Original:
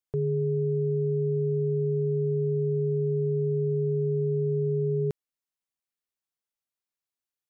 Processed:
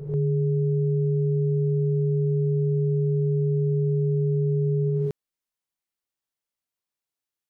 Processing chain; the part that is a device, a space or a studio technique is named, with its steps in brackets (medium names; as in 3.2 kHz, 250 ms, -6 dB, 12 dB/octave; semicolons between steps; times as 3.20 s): reverse reverb (reverse; reverberation RT60 0.85 s, pre-delay 10 ms, DRR 2.5 dB; reverse)